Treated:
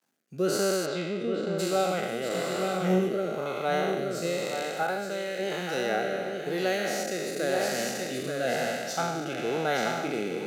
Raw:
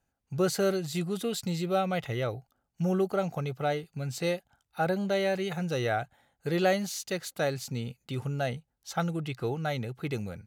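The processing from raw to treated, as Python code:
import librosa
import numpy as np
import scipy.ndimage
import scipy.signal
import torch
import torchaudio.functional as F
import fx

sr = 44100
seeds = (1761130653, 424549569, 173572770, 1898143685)

y = fx.spec_trails(x, sr, decay_s=2.38)
y = y + 10.0 ** (-6.5 / 20.0) * np.pad(y, (int(877 * sr / 1000.0), 0))[:len(y)]
y = fx.quant_dither(y, sr, seeds[0], bits=12, dither='none')
y = fx.lowpass(y, sr, hz=fx.line((0.85, 4200.0), (1.58, 1700.0)), slope=12, at=(0.85, 1.58), fade=0.02)
y = fx.rider(y, sr, range_db=5, speed_s=0.5)
y = scipy.signal.sosfilt(scipy.signal.butter(4, 190.0, 'highpass', fs=sr, output='sos'), y)
y = fx.room_flutter(y, sr, wall_m=3.7, rt60_s=0.25, at=(2.28, 3.09))
y = fx.rotary(y, sr, hz=1.0)
y = fx.low_shelf(y, sr, hz=390.0, db=-9.5, at=(4.83, 5.39))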